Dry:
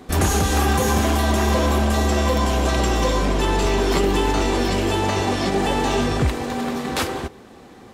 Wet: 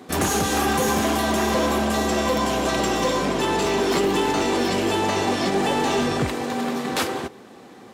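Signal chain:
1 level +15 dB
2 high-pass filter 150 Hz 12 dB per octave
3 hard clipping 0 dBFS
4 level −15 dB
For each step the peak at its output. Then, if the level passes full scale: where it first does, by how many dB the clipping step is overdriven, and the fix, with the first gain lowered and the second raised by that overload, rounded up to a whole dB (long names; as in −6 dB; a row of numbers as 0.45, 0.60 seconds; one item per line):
+9.0, +7.0, 0.0, −15.0 dBFS
step 1, 7.0 dB
step 1 +8 dB, step 4 −8 dB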